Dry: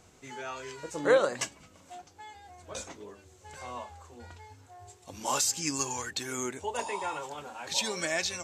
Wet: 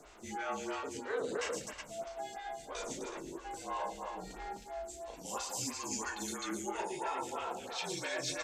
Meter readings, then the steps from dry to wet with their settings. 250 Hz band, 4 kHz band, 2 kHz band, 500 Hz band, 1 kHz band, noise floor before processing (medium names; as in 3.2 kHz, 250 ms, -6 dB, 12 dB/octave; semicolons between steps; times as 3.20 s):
-3.0 dB, -7.5 dB, -6.0 dB, -7.5 dB, -2.5 dB, -59 dBFS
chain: delay 114 ms -9.5 dB; reverse; compression 4:1, threshold -42 dBFS, peak gain reduction 19.5 dB; reverse; bass shelf 130 Hz -6 dB; on a send: loudspeakers at several distances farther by 12 m -4 dB, 88 m -3 dB; on the sum: frequency shift -45 Hz; doubling 15 ms -10.5 dB; lamp-driven phase shifter 3 Hz; trim +5.5 dB